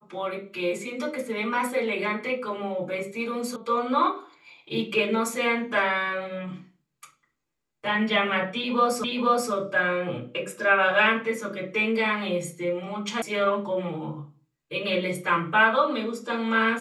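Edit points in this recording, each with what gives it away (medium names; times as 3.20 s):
3.56 s: sound stops dead
9.04 s: repeat of the last 0.48 s
13.22 s: sound stops dead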